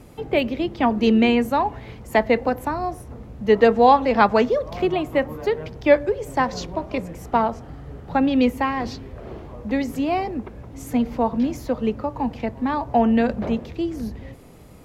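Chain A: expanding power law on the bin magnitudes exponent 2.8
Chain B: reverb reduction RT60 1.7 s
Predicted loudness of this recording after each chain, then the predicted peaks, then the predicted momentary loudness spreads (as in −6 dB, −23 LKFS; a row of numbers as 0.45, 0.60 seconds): −22.0, −22.5 LKFS; −5.5, −3.5 dBFS; 16, 13 LU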